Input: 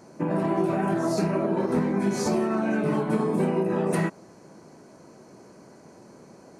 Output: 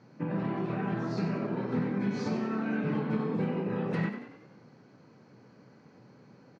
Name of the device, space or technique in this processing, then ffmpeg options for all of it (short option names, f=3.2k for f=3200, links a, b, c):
frequency-shifting delay pedal into a guitar cabinet: -filter_complex "[0:a]asplit=7[a][b][c][d][e][f][g];[b]adelay=93,afreqshift=36,volume=-9dB[h];[c]adelay=186,afreqshift=72,volume=-14.8dB[i];[d]adelay=279,afreqshift=108,volume=-20.7dB[j];[e]adelay=372,afreqshift=144,volume=-26.5dB[k];[f]adelay=465,afreqshift=180,volume=-32.4dB[l];[g]adelay=558,afreqshift=216,volume=-38.2dB[m];[a][h][i][j][k][l][m]amix=inputs=7:normalize=0,highpass=100,equalizer=f=120:t=q:w=4:g=10,equalizer=f=360:t=q:w=4:g=-8,equalizer=f=650:t=q:w=4:g=-10,equalizer=f=1k:t=q:w=4:g=-5,lowpass=f=4.4k:w=0.5412,lowpass=f=4.4k:w=1.3066,volume=-5dB"